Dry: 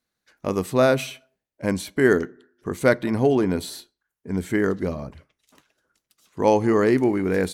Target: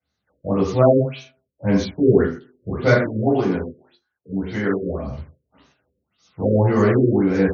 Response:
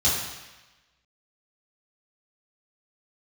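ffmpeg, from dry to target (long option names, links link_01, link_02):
-filter_complex "[0:a]asettb=1/sr,asplit=3[link_01][link_02][link_03];[link_01]atrim=end=2.984[link_04];[link_02]atrim=start=2.98:end=5.05,asetpts=PTS-STARTPTS,afade=type=in:duration=0.004:curve=qsin,afade=type=out:start_time=2.066:duration=0.004:curve=qsin,lowshelf=frequency=190:gain=-10.5[link_05];[link_03]atrim=start=5.046[link_06];[link_04][link_05]acrossfade=duration=0.004:curve1=hsin:curve2=qsin[link_07];[link_07][link_06]acrossfade=duration=0.004:curve1=qsin:curve2=hsin[link_08];[1:a]atrim=start_sample=2205,atrim=end_sample=6615[link_09];[link_08][link_09]afir=irnorm=-1:irlink=0,afftfilt=real='re*lt(b*sr/1024,560*pow(6900/560,0.5+0.5*sin(2*PI*1.8*pts/sr)))':imag='im*lt(b*sr/1024,560*pow(6900/560,0.5+0.5*sin(2*PI*1.8*pts/sr)))':win_size=1024:overlap=0.75,volume=-10.5dB"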